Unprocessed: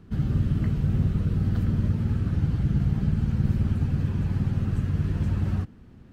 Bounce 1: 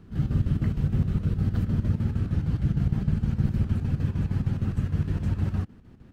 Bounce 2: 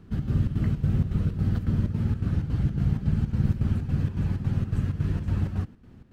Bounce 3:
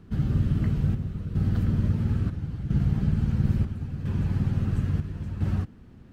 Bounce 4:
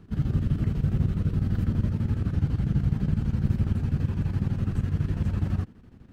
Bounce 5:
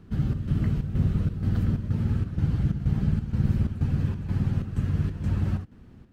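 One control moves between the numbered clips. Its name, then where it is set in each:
square tremolo, rate: 6.5 Hz, 3.6 Hz, 0.74 Hz, 12 Hz, 2.1 Hz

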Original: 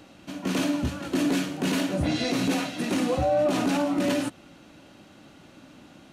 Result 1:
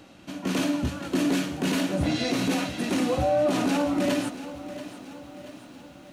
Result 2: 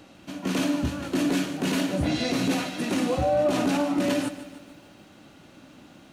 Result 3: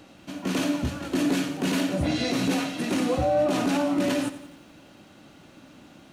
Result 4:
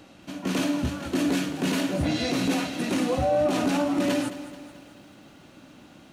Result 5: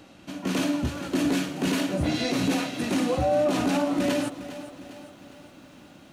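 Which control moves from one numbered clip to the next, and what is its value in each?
bit-crushed delay, time: 682 ms, 148 ms, 88 ms, 217 ms, 406 ms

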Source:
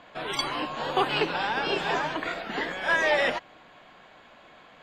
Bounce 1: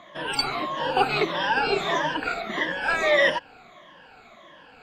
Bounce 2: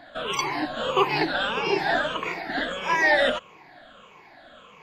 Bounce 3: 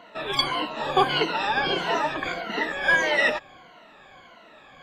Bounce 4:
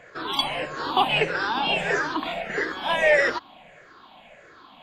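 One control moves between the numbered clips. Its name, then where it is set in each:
drifting ripple filter, ripples per octave: 1.2, 0.78, 1.9, 0.52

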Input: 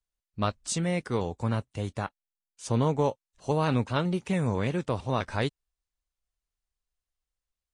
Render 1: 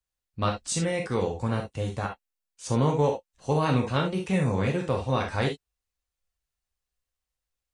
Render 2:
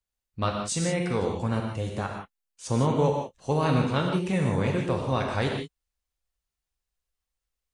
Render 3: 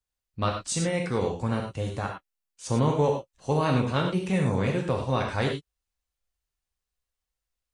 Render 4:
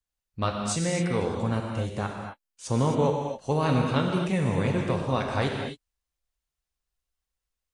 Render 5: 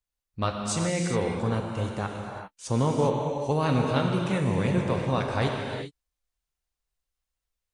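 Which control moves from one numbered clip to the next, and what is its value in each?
gated-style reverb, gate: 90 ms, 200 ms, 130 ms, 290 ms, 430 ms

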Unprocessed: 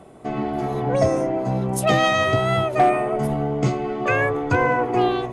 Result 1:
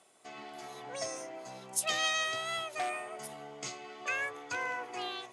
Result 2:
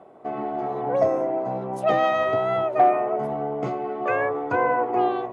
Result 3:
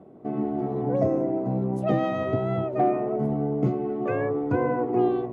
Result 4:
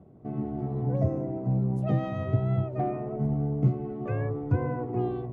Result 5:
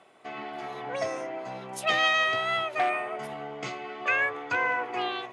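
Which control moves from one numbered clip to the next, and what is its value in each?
band-pass filter, frequency: 6.7 kHz, 730 Hz, 270 Hz, 110 Hz, 2.6 kHz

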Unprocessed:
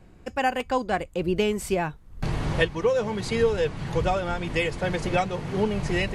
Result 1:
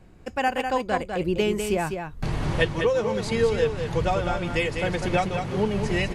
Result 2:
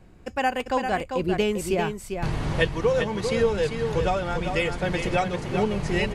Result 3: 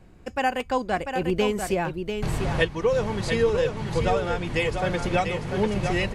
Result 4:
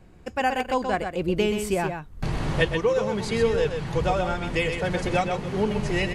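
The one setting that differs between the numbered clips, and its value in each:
delay, time: 200 ms, 396 ms, 694 ms, 127 ms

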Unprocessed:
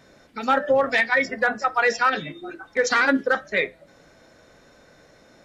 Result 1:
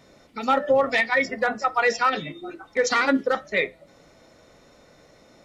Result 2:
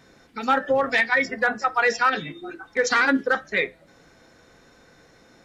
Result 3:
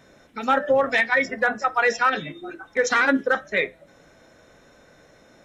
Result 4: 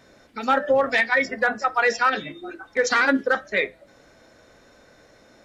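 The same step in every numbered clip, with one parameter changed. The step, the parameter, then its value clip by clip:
band-stop, frequency: 1.6 kHz, 600 Hz, 4.6 kHz, 160 Hz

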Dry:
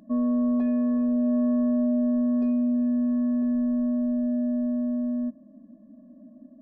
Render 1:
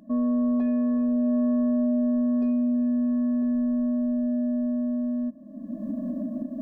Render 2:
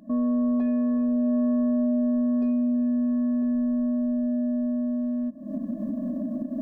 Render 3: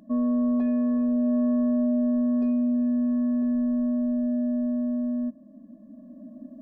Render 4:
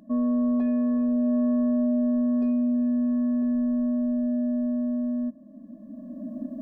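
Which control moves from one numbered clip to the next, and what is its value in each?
recorder AGC, rising by: 34 dB/s, 83 dB/s, 5.1 dB/s, 13 dB/s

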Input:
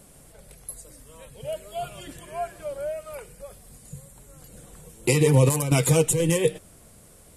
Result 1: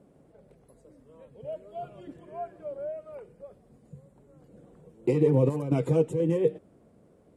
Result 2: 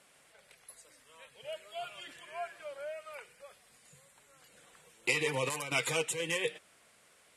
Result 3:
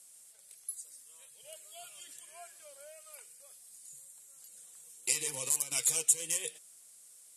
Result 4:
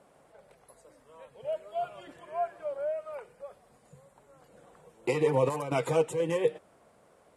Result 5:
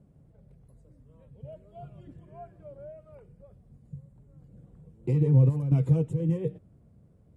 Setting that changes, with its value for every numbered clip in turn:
band-pass filter, frequency: 320 Hz, 2.2 kHz, 7.8 kHz, 840 Hz, 120 Hz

